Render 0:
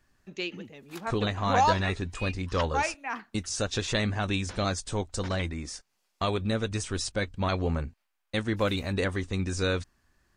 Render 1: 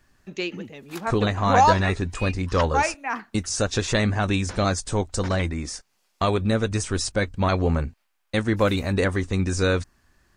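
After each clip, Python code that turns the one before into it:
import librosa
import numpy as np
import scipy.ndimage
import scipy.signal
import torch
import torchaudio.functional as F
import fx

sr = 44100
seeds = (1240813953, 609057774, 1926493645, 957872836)

y = fx.dynamic_eq(x, sr, hz=3300.0, q=1.5, threshold_db=-48.0, ratio=4.0, max_db=-5)
y = y * 10.0 ** (6.5 / 20.0)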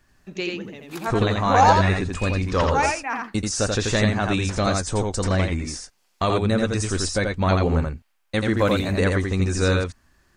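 y = x + 10.0 ** (-3.5 / 20.0) * np.pad(x, (int(85 * sr / 1000.0), 0))[:len(x)]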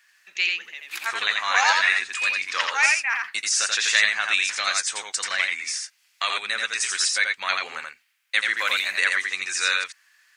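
y = fx.highpass_res(x, sr, hz=2000.0, q=1.8)
y = y * 10.0 ** (4.5 / 20.0)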